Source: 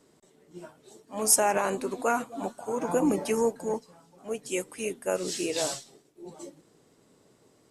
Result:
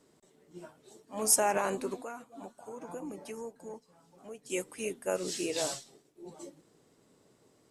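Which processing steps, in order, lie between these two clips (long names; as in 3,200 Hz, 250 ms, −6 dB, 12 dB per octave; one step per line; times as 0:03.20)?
0:01.96–0:04.50: downward compressor 2 to 1, threshold −46 dBFS, peak gain reduction 14 dB
level −3.5 dB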